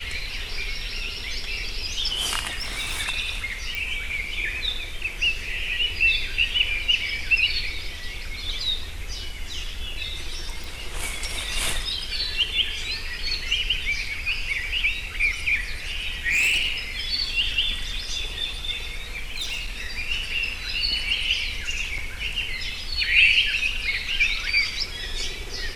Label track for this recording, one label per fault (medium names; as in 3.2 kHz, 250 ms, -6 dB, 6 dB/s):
2.600000	3.010000	clipped -24 dBFS
3.750000	3.750000	pop
10.640000	10.640000	pop
16.300000	16.720000	clipped -18 dBFS
19.170000	19.700000	clipped -25 dBFS
21.980000	21.980000	dropout 4.4 ms